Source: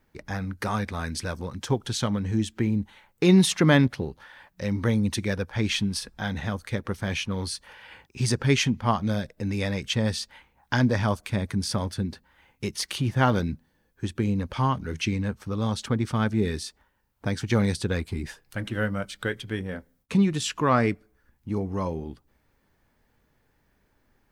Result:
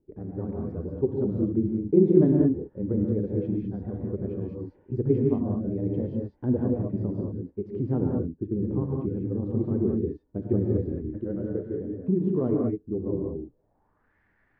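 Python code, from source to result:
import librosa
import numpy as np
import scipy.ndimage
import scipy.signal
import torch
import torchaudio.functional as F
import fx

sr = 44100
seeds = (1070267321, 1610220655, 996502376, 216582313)

y = fx.stretch_grains(x, sr, factor=0.6, grain_ms=72.0)
y = fx.rev_gated(y, sr, seeds[0], gate_ms=230, shape='rising', drr_db=-1.0)
y = fx.filter_sweep_lowpass(y, sr, from_hz=380.0, to_hz=1900.0, start_s=13.45, end_s=14.17, q=3.2)
y = y * 10.0 ** (-5.0 / 20.0)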